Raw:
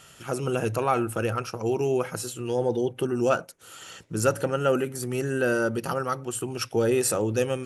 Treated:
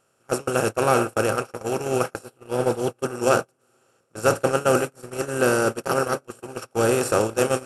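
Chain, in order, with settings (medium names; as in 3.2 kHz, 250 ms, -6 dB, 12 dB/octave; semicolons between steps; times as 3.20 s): spectral levelling over time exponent 0.4; 2.25–2.79 s: peaking EQ 6.7 kHz -11 dB 0.58 oct; echo that smears into a reverb 557 ms, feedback 42%, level -11 dB; gate -18 dBFS, range -38 dB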